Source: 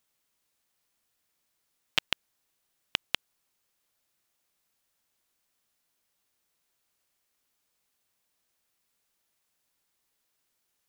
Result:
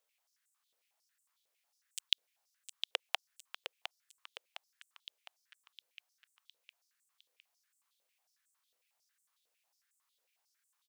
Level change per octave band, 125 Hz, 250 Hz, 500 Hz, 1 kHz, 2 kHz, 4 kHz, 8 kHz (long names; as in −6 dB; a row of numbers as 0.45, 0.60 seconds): below −30 dB, below −15 dB, −3.0 dB, −4.0 dB, −7.5 dB, −3.0 dB, −1.5 dB